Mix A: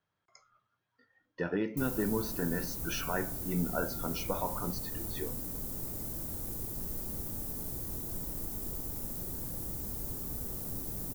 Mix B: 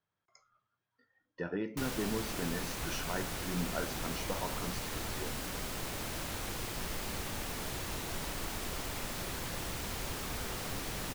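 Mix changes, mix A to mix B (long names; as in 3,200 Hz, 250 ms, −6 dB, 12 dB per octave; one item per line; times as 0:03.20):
speech −4.0 dB
background: remove drawn EQ curve 280 Hz 0 dB, 2,700 Hz −22 dB, 16,000 Hz +9 dB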